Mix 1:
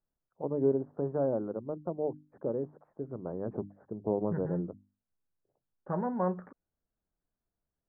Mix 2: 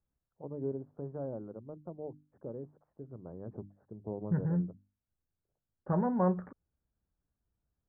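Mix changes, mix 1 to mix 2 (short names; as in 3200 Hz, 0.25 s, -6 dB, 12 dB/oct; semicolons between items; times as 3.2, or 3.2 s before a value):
first voice -11.0 dB; master: add bell 64 Hz +12.5 dB 2.3 oct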